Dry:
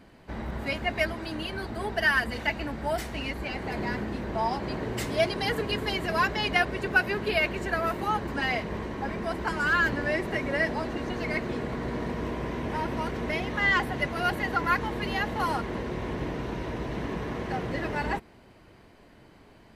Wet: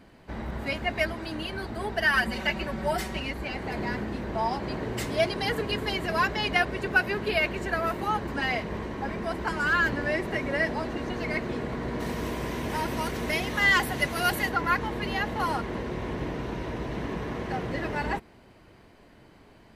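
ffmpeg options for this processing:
-filter_complex "[0:a]asettb=1/sr,asplit=3[s0][s1][s2];[s0]atrim=end=2.134[s3];[s1]atrim=start=2.13:end=3.2,asetpts=PTS-STARTPTS,afade=t=in:d=0.004:c=qsin,afade=t=out:st=1.066:d=0.004:c=qsin,aecho=1:1:5.3:0.96,atrim=end_sample=47187[s4];[s2]atrim=start=3.196[s5];[s3][s4]acrossfade=d=0.004:c1=hsin:c2=qsin[s6];[s6][s5]acrossfade=d=0.004:c1=qsin:c2=hsin,asplit=3[s7][s8][s9];[s7]afade=t=out:st=11.99:d=0.02[s10];[s8]aemphasis=mode=production:type=75kf,afade=t=in:st=11.99:d=0.02,afade=t=out:st=14.48:d=0.02[s11];[s9]afade=t=in:st=14.48:d=0.02[s12];[s10][s11][s12]amix=inputs=3:normalize=0"

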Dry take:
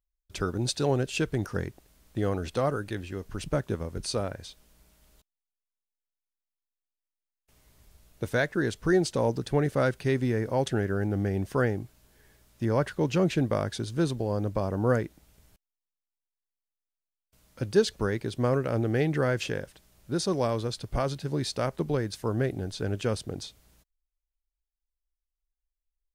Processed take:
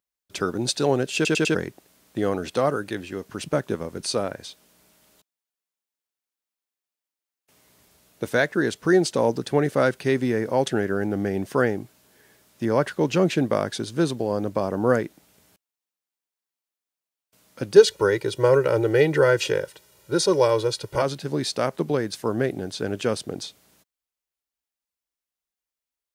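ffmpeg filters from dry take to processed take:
-filter_complex "[0:a]asettb=1/sr,asplit=3[s0][s1][s2];[s0]atrim=end=17.764[s3];[s1]atrim=start=17.76:end=21.02,asetpts=PTS-STARTPTS,afade=t=in:d=0.004:c=qsin,afade=t=out:st=3.256:d=0.004:c=qsin,aecho=1:1:2.1:0.95,atrim=end_sample=143766[s4];[s2]atrim=start=21.016[s5];[s3][s4]acrossfade=d=0.004:c1=hsin:c2=qsin[s6];[s6][s5]acrossfade=d=0.004:c1=qsin:c2=hsin,asplit=5[s7][s8][s9][s10][s11];[s7]atrim=end=1.252[s12];[s8]atrim=start=1.148:end=1.252[s13];[s9]atrim=start=1.148:end=1.252[s14];[s10]atrim=start=1.148:end=1.252[s15];[s11]atrim=start=1.548[s16];[s12][s13]acrossfade=d=0.004:c1=hsin:c2=hsin[s17];[s17][s14]acrossfade=d=0.004:c1=hsin:c2=hsin[s18];[s18][s15]acrossfade=d=0.004:c1=hsin:c2=hsin[s19];[s19][s16]acrossfade=d=0.004:c1=hsin:c2=hsin,highpass=180,volume=1.88"

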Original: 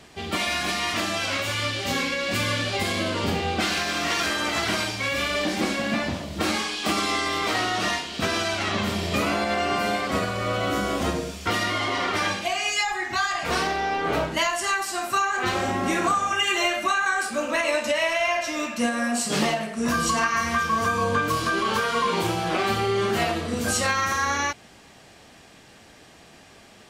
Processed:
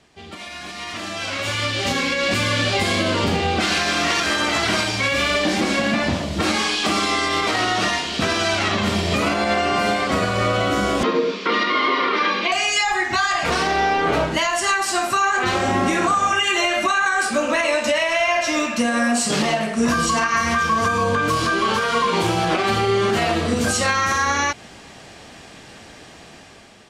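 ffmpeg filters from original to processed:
-filter_complex "[0:a]asettb=1/sr,asplit=3[s0][s1][s2];[s0]atrim=end=11.034[s3];[s1]atrim=start=11.03:end=12.52,asetpts=PTS-STARTPTS,afade=t=in:d=0.004:c=qsin,afade=t=out:st=1.486:d=0.004:c=qsin,highpass=f=220:w=0.5412,highpass=f=220:w=1.3066,equalizer=f=230:t=q:w=4:g=7,equalizer=f=450:t=q:w=4:g=10,equalizer=f=720:t=q:w=4:g=-10,equalizer=f=1100:t=q:w=4:g=9,equalizer=f=2200:t=q:w=4:g=4,equalizer=f=3900:t=q:w=4:g=3,lowpass=f=4700:w=0.5412,lowpass=f=4700:w=1.3066[s4];[s2]atrim=start=12.516[s5];[s3][s4]acrossfade=d=0.004:c1=hsin:c2=qsin[s6];[s6][s5]acrossfade=d=0.004:c1=qsin:c2=hsin,lowpass=9900,alimiter=limit=0.119:level=0:latency=1:release=147,dynaudnorm=f=560:g=5:m=6.68,volume=0.447"

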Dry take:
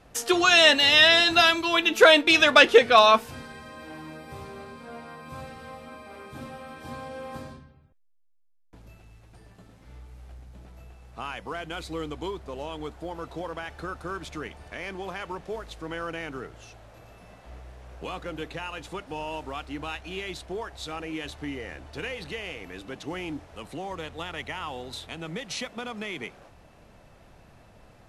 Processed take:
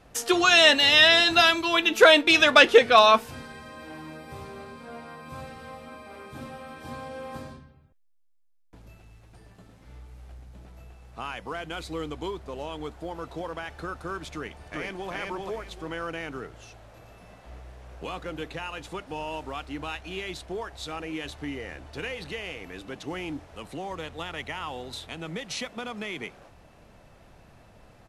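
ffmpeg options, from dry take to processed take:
-filter_complex "[0:a]asplit=2[s0][s1];[s1]afade=t=in:st=14.34:d=0.01,afade=t=out:st=15.11:d=0.01,aecho=0:1:390|780|1170|1560:0.841395|0.210349|0.0525872|0.0131468[s2];[s0][s2]amix=inputs=2:normalize=0"

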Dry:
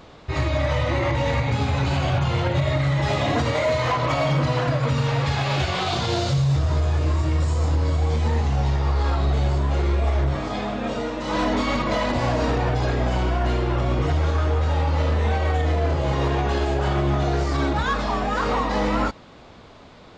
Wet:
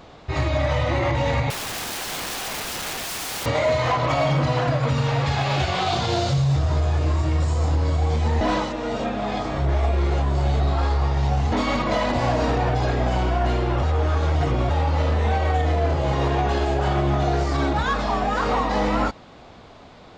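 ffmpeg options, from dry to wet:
-filter_complex "[0:a]asettb=1/sr,asplit=3[s0][s1][s2];[s0]atrim=end=1.504[s3];[s1]atrim=start=1.5:end=3.46,asetpts=PTS-STARTPTS,afade=t=in:d=0.004:c=qsin,afade=t=out:st=1.956:d=0.004:c=qsin,aeval=exprs='(mod(18.8*val(0)+1,2)-1)/18.8':c=same[s4];[s2]atrim=start=3.456[s5];[s3][s4]acrossfade=d=0.004:c1=hsin:c2=qsin[s6];[s6][s5]acrossfade=d=0.004:c1=qsin:c2=hsin,asplit=5[s7][s8][s9][s10][s11];[s7]atrim=end=8.412[s12];[s8]atrim=start=8.408:end=11.522,asetpts=PTS-STARTPTS,areverse[s13];[s9]atrim=start=11.518:end=13.832[s14];[s10]atrim=start=13.828:end=14.702,asetpts=PTS-STARTPTS,areverse[s15];[s11]atrim=start=14.698[s16];[s12][s13]acrossfade=d=0.004:c1=hsin:c2=hsin[s17];[s17][s14]acrossfade=d=0.004:c1=hsin:c2=hsin[s18];[s18][s15]acrossfade=d=0.004:c1=hsin:c2=hsin[s19];[s19][s16]acrossfade=d=0.004:c1=hsin:c2=hsin,equalizer=f=740:t=o:w=0.31:g=4.5"

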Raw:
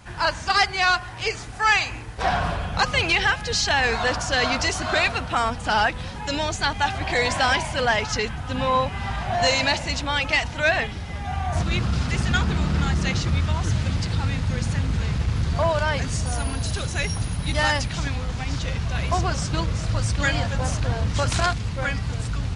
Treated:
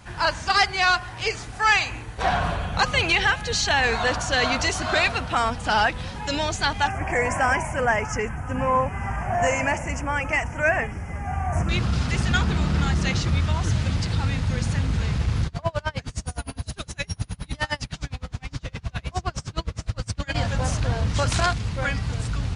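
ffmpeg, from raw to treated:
-filter_complex "[0:a]asettb=1/sr,asplit=3[s0][s1][s2];[s0]atrim=end=1.794[s3];[s1]atrim=start=1.79:end=4.74,asetpts=PTS-STARTPTS,afade=t=in:d=0.004:c=qsin,afade=t=out:st=2.946:d=0.004:c=qsin,bandreject=f=5100:w=9[s4];[s2]atrim=start=4.736[s5];[s3][s4]acrossfade=d=0.004:c1=hsin:c2=qsin[s6];[s6][s5]acrossfade=d=0.004:c1=qsin:c2=hsin,asettb=1/sr,asplit=3[s7][s8][s9];[s7]atrim=end=6.874[s10];[s8]atrim=start=6.87:end=11.69,asetpts=PTS-STARTPTS,afade=t=in:d=0.004:c=qsin,afade=t=out:st=4.816:d=0.004:c=qsin,asuperstop=centerf=3900:order=4:qfactor=0.95[s11];[s9]atrim=start=11.686[s12];[s10][s11]acrossfade=d=0.004:c1=hsin:c2=qsin[s13];[s13][s12]acrossfade=d=0.004:c1=qsin:c2=hsin,asplit=3[s14][s15][s16];[s14]afade=t=out:st=15.46:d=0.02[s17];[s15]aeval=exprs='val(0)*pow(10,-32*(0.5-0.5*cos(2*PI*9.7*n/s))/20)':c=same,afade=t=in:st=15.46:d=0.02,afade=t=out:st=20.34:d=0.02[s18];[s16]afade=t=in:st=20.34:d=0.02[s19];[s17][s18][s19]amix=inputs=3:normalize=0"

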